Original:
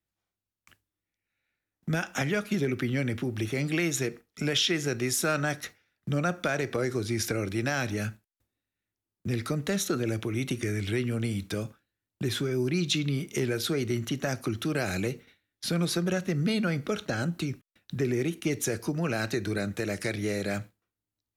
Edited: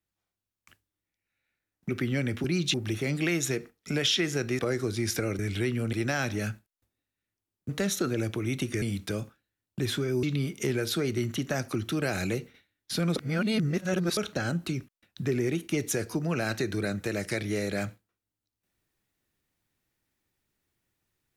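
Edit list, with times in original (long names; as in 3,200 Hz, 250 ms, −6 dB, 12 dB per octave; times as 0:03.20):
0:01.89–0:02.70: remove
0:05.10–0:06.71: remove
0:09.27–0:09.58: remove
0:10.71–0:11.25: move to 0:07.51
0:12.66–0:12.96: move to 0:03.25
0:15.89–0:16.90: reverse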